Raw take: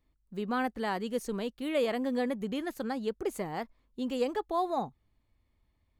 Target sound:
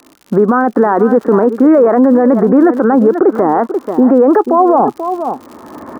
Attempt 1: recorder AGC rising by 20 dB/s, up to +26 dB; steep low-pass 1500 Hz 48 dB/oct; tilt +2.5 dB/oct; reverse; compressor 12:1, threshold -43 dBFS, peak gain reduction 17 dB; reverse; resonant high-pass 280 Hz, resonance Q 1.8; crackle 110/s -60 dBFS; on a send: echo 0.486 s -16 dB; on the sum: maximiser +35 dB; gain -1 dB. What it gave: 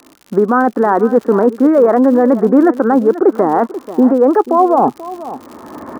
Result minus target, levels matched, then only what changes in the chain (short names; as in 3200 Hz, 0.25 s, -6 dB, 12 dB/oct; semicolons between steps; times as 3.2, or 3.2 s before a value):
compressor: peak gain reduction +8.5 dB
change: compressor 12:1, threshold -33.5 dBFS, peak gain reduction 8 dB